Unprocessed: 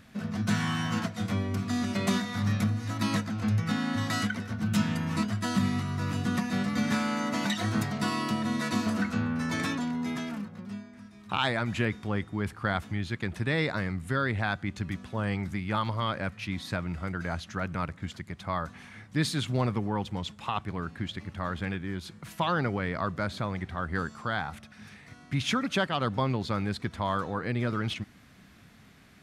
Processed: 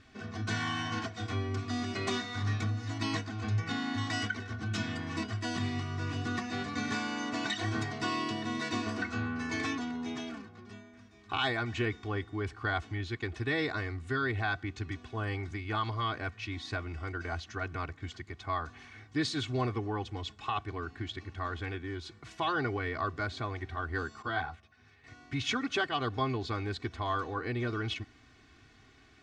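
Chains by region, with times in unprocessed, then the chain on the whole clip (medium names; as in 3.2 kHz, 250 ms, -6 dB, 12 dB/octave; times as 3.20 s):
24.22–25.04 s: treble shelf 4.8 kHz -9 dB + doubling 12 ms -3 dB + upward expansion, over -46 dBFS
whole clip: low-pass 7.1 kHz 24 dB/octave; band-stop 700 Hz, Q 18; comb 2.7 ms, depth 95%; trim -5 dB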